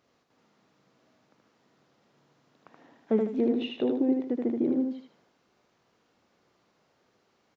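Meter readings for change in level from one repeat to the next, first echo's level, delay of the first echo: -9.5 dB, -3.5 dB, 77 ms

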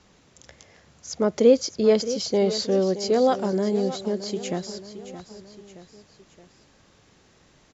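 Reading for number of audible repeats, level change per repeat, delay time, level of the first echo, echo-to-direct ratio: 3, -5.5 dB, 621 ms, -13.0 dB, -11.5 dB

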